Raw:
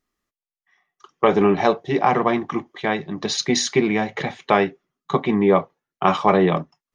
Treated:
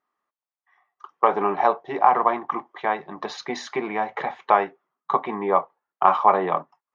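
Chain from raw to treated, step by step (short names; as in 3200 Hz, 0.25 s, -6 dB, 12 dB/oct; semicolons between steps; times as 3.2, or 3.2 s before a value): in parallel at -0.5 dB: compressor, threshold -27 dBFS, peak gain reduction 15.5 dB; on the sum: band-pass 960 Hz, Q 2; gain +2.5 dB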